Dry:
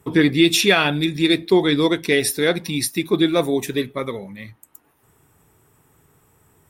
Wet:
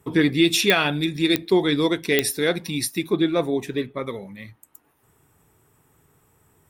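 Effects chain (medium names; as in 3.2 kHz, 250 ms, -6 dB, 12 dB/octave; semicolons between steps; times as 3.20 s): 3.13–4.07 s: low-pass 2.9 kHz 6 dB/octave; clicks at 0.70/1.36/2.19 s, 0 dBFS; trim -3 dB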